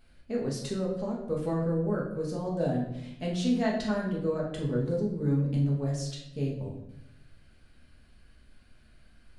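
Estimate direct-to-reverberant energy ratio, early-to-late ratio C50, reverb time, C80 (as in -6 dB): -4.0 dB, 4.0 dB, 0.80 s, 7.5 dB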